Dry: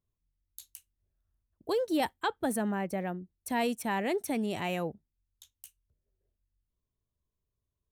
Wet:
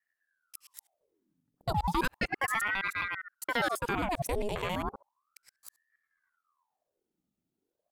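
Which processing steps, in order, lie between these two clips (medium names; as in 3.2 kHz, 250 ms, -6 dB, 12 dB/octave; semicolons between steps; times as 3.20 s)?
time reversed locally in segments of 67 ms; ring modulator with a swept carrier 1 kHz, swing 80%, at 0.34 Hz; trim +3 dB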